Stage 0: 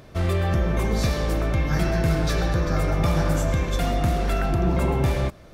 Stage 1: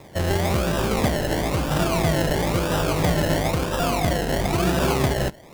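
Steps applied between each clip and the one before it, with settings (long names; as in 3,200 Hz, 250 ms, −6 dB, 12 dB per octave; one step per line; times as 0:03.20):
high-pass filter 67 Hz
low-shelf EQ 240 Hz −7.5 dB
sample-and-hold swept by an LFO 29×, swing 60% 1 Hz
level +5.5 dB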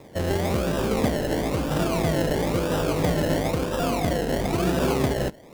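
hollow resonant body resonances 260/460 Hz, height 6 dB, ringing for 20 ms
level −4.5 dB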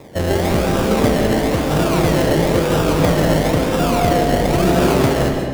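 comb and all-pass reverb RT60 1.5 s, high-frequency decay 0.7×, pre-delay 95 ms, DRR 2.5 dB
level +6.5 dB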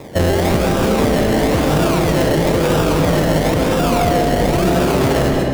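brickwall limiter −12.5 dBFS, peak gain reduction 10.5 dB
level +5.5 dB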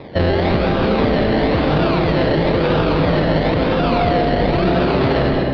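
elliptic low-pass filter 4,400 Hz, stop band 50 dB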